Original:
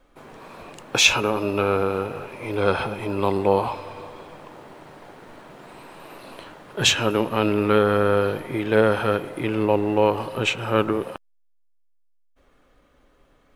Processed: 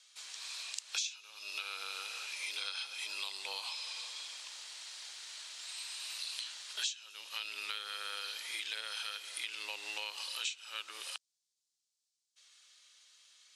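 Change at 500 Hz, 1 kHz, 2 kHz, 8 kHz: -37.5, -23.5, -14.5, -10.5 dB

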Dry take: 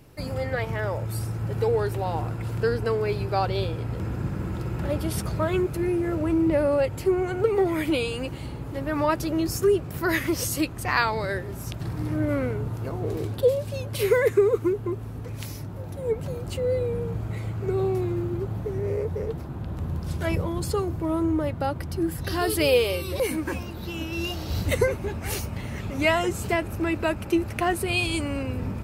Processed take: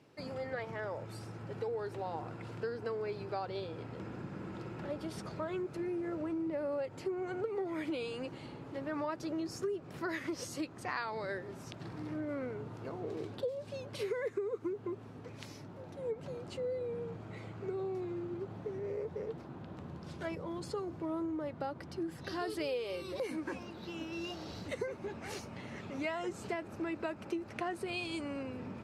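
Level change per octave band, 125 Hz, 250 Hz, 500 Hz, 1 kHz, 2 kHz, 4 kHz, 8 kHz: -18.5, -12.0, -13.0, -12.5, -13.5, -14.0, -17.0 dB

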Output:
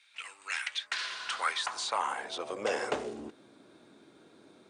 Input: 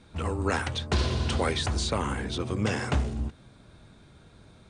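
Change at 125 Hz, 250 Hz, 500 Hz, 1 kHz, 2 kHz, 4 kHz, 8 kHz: -31.5, -14.5, -5.0, -1.0, -0.5, -2.0, -3.5 dB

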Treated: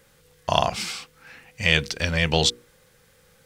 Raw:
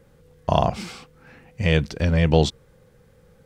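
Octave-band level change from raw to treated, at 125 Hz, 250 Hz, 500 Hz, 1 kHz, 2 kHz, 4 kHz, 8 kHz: -7.0, -7.0, -4.0, -0.5, +6.0, +8.0, +9.5 dB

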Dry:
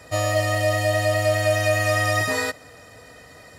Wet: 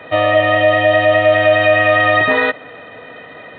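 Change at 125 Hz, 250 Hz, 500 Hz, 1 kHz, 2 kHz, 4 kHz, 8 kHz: -1.0 dB, +9.5 dB, +10.0 dB, +10.5 dB, +10.5 dB, +6.5 dB, under -40 dB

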